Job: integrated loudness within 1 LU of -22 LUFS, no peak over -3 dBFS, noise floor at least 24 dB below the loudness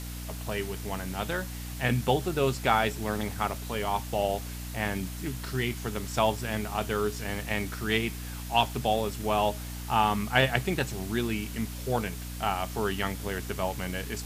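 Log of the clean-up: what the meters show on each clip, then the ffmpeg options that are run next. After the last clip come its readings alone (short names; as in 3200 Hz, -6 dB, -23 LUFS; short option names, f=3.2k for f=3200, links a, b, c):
hum 60 Hz; harmonics up to 300 Hz; hum level -36 dBFS; noise floor -38 dBFS; noise floor target -54 dBFS; loudness -29.5 LUFS; peak -6.5 dBFS; loudness target -22.0 LUFS
-> -af "bandreject=f=60:t=h:w=4,bandreject=f=120:t=h:w=4,bandreject=f=180:t=h:w=4,bandreject=f=240:t=h:w=4,bandreject=f=300:t=h:w=4"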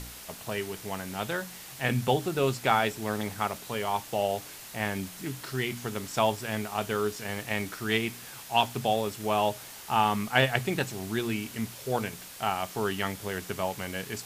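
hum none; noise floor -45 dBFS; noise floor target -54 dBFS
-> -af "afftdn=nr=9:nf=-45"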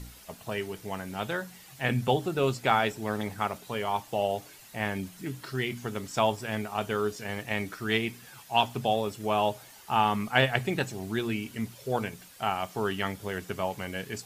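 noise floor -51 dBFS; noise floor target -54 dBFS
-> -af "afftdn=nr=6:nf=-51"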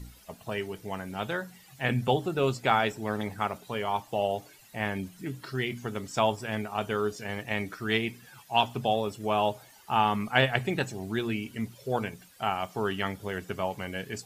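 noise floor -55 dBFS; loudness -30.0 LUFS; peak -6.5 dBFS; loudness target -22.0 LUFS
-> -af "volume=8dB,alimiter=limit=-3dB:level=0:latency=1"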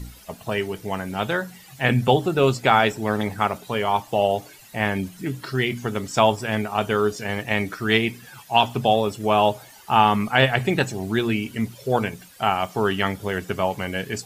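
loudness -22.5 LUFS; peak -3.0 dBFS; noise floor -47 dBFS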